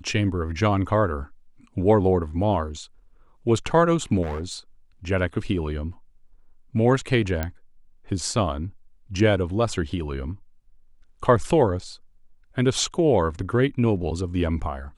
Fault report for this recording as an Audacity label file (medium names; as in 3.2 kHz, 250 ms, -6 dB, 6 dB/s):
4.220000	4.540000	clipped -25.5 dBFS
7.430000	7.430000	pop -12 dBFS